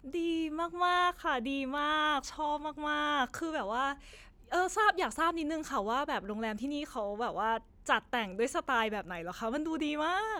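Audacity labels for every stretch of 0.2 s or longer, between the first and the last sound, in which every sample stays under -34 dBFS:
3.930000	4.520000	silence
7.570000	7.870000	silence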